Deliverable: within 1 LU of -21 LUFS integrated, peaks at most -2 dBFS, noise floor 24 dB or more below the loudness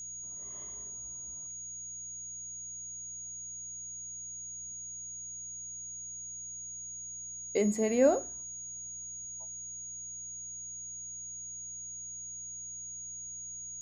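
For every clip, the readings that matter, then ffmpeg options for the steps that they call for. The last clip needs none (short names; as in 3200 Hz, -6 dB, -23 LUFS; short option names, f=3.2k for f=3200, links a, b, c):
hum 60 Hz; harmonics up to 180 Hz; hum level -60 dBFS; steady tone 6700 Hz; tone level -40 dBFS; loudness -37.0 LUFS; peak -12.5 dBFS; loudness target -21.0 LUFS
-> -af "bandreject=f=60:t=h:w=4,bandreject=f=120:t=h:w=4,bandreject=f=180:t=h:w=4"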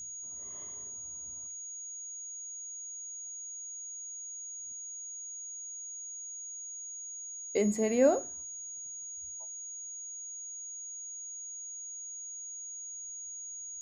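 hum none; steady tone 6700 Hz; tone level -40 dBFS
-> -af "bandreject=f=6.7k:w=30"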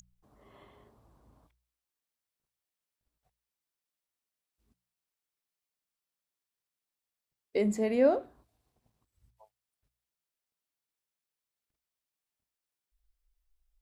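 steady tone none; loudness -28.5 LUFS; peak -13.0 dBFS; loudness target -21.0 LUFS
-> -af "volume=7.5dB"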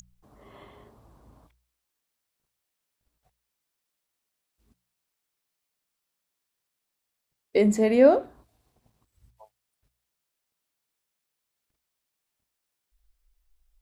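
loudness -21.0 LUFS; peak -5.5 dBFS; noise floor -83 dBFS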